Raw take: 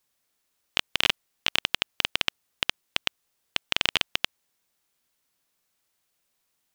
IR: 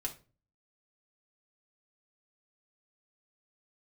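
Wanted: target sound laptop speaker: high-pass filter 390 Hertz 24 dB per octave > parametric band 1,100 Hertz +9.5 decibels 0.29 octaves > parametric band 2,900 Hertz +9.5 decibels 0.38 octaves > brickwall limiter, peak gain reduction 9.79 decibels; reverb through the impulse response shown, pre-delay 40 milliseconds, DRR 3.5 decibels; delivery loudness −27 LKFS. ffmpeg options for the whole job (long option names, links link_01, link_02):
-filter_complex "[0:a]asplit=2[link_01][link_02];[1:a]atrim=start_sample=2205,adelay=40[link_03];[link_02][link_03]afir=irnorm=-1:irlink=0,volume=-4dB[link_04];[link_01][link_04]amix=inputs=2:normalize=0,highpass=frequency=390:width=0.5412,highpass=frequency=390:width=1.3066,equalizer=frequency=1100:width_type=o:width=0.29:gain=9.5,equalizer=frequency=2900:width_type=o:width=0.38:gain=9.5,volume=-2dB,alimiter=limit=-9dB:level=0:latency=1"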